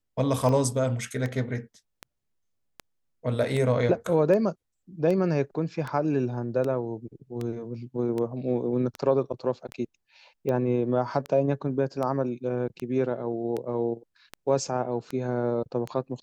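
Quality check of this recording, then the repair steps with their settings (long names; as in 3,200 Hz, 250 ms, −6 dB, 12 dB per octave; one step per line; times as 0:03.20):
scratch tick 78 rpm −19 dBFS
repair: click removal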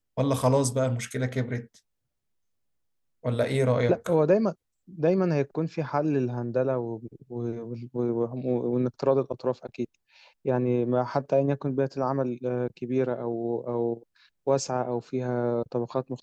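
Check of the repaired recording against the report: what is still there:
none of them is left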